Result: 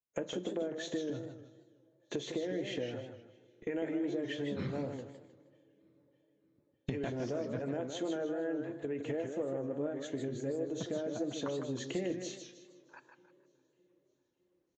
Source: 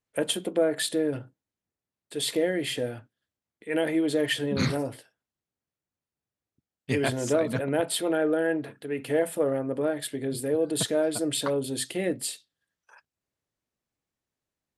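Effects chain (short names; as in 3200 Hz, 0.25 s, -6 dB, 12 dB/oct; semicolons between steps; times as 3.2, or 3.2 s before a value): nonlinear frequency compression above 3600 Hz 1.5:1; recorder AGC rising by 6.7 dB/s; HPF 320 Hz 6 dB/oct; gate -47 dBFS, range -17 dB; tilt -3.5 dB/oct; compressor 6:1, threshold -35 dBFS, peak gain reduction 17.5 dB; on a send at -15 dB: feedback echo 0.607 s, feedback 53%, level -15 dB + reverb RT60 0.90 s, pre-delay 3 ms; on the sum: downsampling 16000 Hz; warbling echo 0.156 s, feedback 34%, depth 150 cents, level -7 dB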